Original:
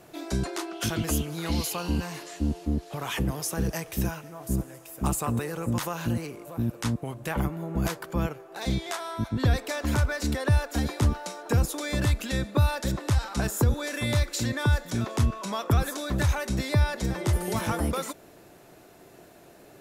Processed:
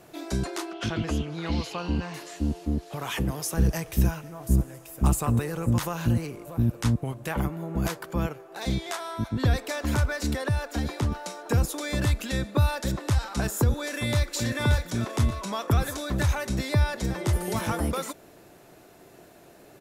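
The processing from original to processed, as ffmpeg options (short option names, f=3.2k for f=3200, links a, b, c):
-filter_complex "[0:a]asettb=1/sr,asplit=3[a][b][c];[a]atrim=end=0.734[d];[b]atrim=start=0.73:end=2.14,asetpts=PTS-STARTPTS,afade=t=in:d=0.004:c=qsin,afade=t=out:st=1.406:d=0.004:c=qsin,lowpass=4k[e];[c]atrim=start=2.136[f];[d][e]acrossfade=d=0.004:c1=hsin:c2=qsin[g];[g][f]acrossfade=d=0.004:c1=qsin:c2=hsin,asettb=1/sr,asplit=3[h][i][j];[h]atrim=end=3.544[k];[i]atrim=start=3.54:end=7.13,asetpts=PTS-STARTPTS,afade=t=in:d=0.004:c=qsin,afade=t=out:st=3.586:d=0.004:c=qsin,lowshelf=f=120:g=11[l];[j]atrim=start=7.126[m];[k][l]acrossfade=d=0.004:c1=hsin:c2=qsin[n];[n][m]acrossfade=d=0.004:c1=qsin:c2=hsin,asettb=1/sr,asplit=3[o][p][q];[o]atrim=end=10.424[r];[p]atrim=start=10.42:end=11.12,asetpts=PTS-STARTPTS,afade=t=in:d=0.004:c=qsin,afade=t=out:st=0.696:d=0.004:c=qsin,acrossover=split=110|6000[s][t][u];[s]acompressor=threshold=-27dB:ratio=4[v];[t]acompressor=threshold=-26dB:ratio=4[w];[u]acompressor=threshold=-49dB:ratio=4[x];[v][w][x]amix=inputs=3:normalize=0[y];[q]atrim=start=11.116[z];[r][y]acrossfade=d=0.004:c1=hsin:c2=qsin[aa];[aa][z]acrossfade=d=0.004:c1=qsin:c2=hsin,asplit=2[ab][ac];[ac]afade=t=in:st=13.77:d=0.01,afade=t=out:st=14.29:d=0.01,aecho=0:1:580|1160|1740|2320|2900:0.501187|0.225534|0.10149|0.0456707|0.0205518[ad];[ab][ad]amix=inputs=2:normalize=0"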